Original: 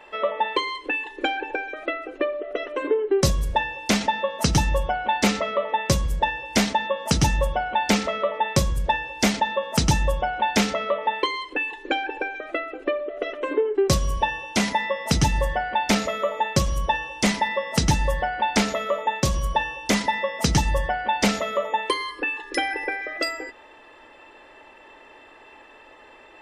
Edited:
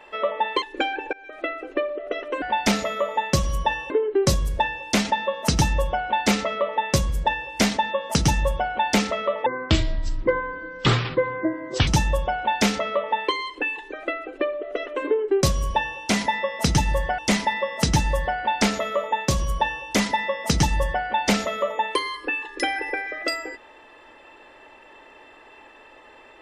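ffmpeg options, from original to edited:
ffmpeg -i in.wav -filter_complex "[0:a]asplit=9[link_01][link_02][link_03][link_04][link_05][link_06][link_07][link_08][link_09];[link_01]atrim=end=0.622[link_10];[link_02]atrim=start=1.058:end=1.57,asetpts=PTS-STARTPTS,afade=type=out:start_time=0.508:duration=0.004:curve=hsin:silence=0.0668344[link_11];[link_03]atrim=start=1.57:end=2.862,asetpts=PTS-STARTPTS,afade=type=in:duration=0.36:silence=0.0668344[link_12];[link_04]atrim=start=15.648:end=17.132[link_13];[link_05]atrim=start=2.858:end=8.424[link_14];[link_06]atrim=start=8.42:end=9.82,asetpts=PTS-STARTPTS,asetrate=25578,aresample=44100,atrim=end_sample=106448,asetpts=PTS-STARTPTS[link_15];[link_07]atrim=start=9.816:end=11.872[link_16];[link_08]atrim=start=12.388:end=15.652[link_17];[link_09]atrim=start=17.128[link_18];[link_11][link_12]concat=n=2:v=0:a=1[link_19];[link_10][link_19]acrossfade=duration=0.004:curve1=hsin:curve2=hsin[link_20];[link_20][link_13]acrossfade=duration=0.004:curve1=hsin:curve2=hsin[link_21];[link_21][link_14]acrossfade=duration=0.004:curve1=hsin:curve2=hsin[link_22];[link_22][link_15]acrossfade=duration=0.004:curve1=hsin:curve2=hsin[link_23];[link_23][link_16]acrossfade=duration=0.004:curve1=hsin:curve2=hsin[link_24];[link_24][link_17]acrossfade=duration=0.004:curve1=hsin:curve2=hsin[link_25];[link_25][link_18]acrossfade=duration=0.004:curve1=hsin:curve2=hsin" out.wav

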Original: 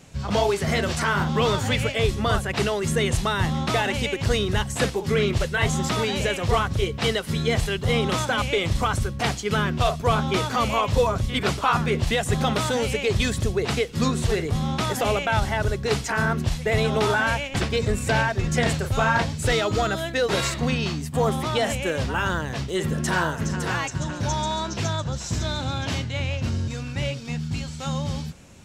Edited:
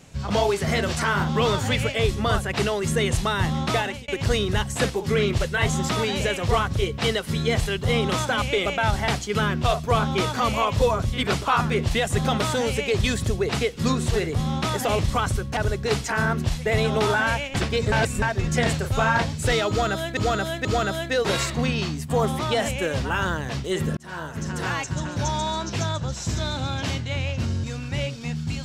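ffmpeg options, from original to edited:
ffmpeg -i in.wav -filter_complex "[0:a]asplit=11[link_01][link_02][link_03][link_04][link_05][link_06][link_07][link_08][link_09][link_10][link_11];[link_01]atrim=end=4.08,asetpts=PTS-STARTPTS,afade=type=out:start_time=3.76:duration=0.32[link_12];[link_02]atrim=start=4.08:end=8.662,asetpts=PTS-STARTPTS,afade=type=in:duration=0.004:curve=hsin[link_13];[link_03]atrim=start=15.148:end=15.572[link_14];[link_04]atrim=start=9.238:end=15.152[link_15];[link_05]atrim=start=8.658:end=9.242[link_16];[link_06]atrim=start=15.568:end=17.922[link_17];[link_07]atrim=start=17.918:end=18.222,asetpts=PTS-STARTPTS,areverse[link_18];[link_08]atrim=start=18.218:end=20.172[link_19];[link_09]atrim=start=19.688:end=20.172[link_20];[link_10]atrim=start=19.688:end=23.01,asetpts=PTS-STARTPTS,afade=type=out:start_time=3.318:duration=0.004:curve=hsin[link_21];[link_11]atrim=start=23.01,asetpts=PTS-STARTPTS,afade=type=in:duration=1.01:curve=qsin[link_22];[link_12][link_13]concat=n=2:v=0:a=1[link_23];[link_23][link_14]acrossfade=duration=0.004:curve1=hsin:curve2=hsin[link_24];[link_24][link_15]acrossfade=duration=0.004:curve1=hsin:curve2=hsin[link_25];[link_25][link_16]acrossfade=duration=0.004:curve1=hsin:curve2=hsin[link_26];[link_26][link_17]acrossfade=duration=0.004:curve1=hsin:curve2=hsin[link_27];[link_27][link_18]acrossfade=duration=0.004:curve1=hsin:curve2=hsin[link_28];[link_28][link_19]acrossfade=duration=0.004:curve1=hsin:curve2=hsin[link_29];[link_29][link_20]acrossfade=duration=0.004:curve1=hsin:curve2=hsin[link_30];[link_21][link_22]concat=n=2:v=0:a=1[link_31];[link_30][link_31]acrossfade=duration=0.004:curve1=hsin:curve2=hsin" out.wav

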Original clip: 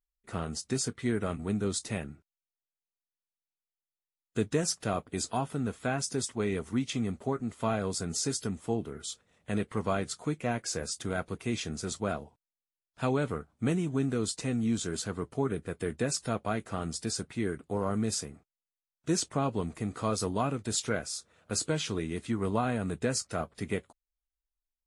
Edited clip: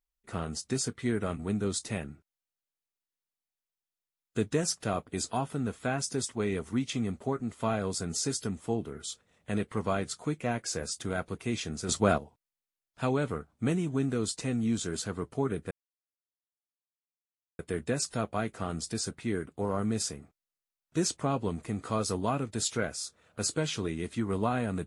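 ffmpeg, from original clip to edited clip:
ffmpeg -i in.wav -filter_complex "[0:a]asplit=4[link_01][link_02][link_03][link_04];[link_01]atrim=end=11.892[link_05];[link_02]atrim=start=11.888:end=12.182,asetpts=PTS-STARTPTS,volume=7.5dB[link_06];[link_03]atrim=start=12.178:end=15.71,asetpts=PTS-STARTPTS,afade=type=out:start_time=3.528:duration=0.004:curve=hsin,apad=pad_dur=1.88[link_07];[link_04]atrim=start=15.71,asetpts=PTS-STARTPTS,afade=type=in:duration=0.004:curve=hsin[link_08];[link_05][link_06]acrossfade=duration=0.004:curve1=hsin:curve2=hsin[link_09];[link_07][link_08]concat=n=2:v=0:a=1[link_10];[link_09][link_10]acrossfade=duration=0.004:curve1=hsin:curve2=hsin" out.wav

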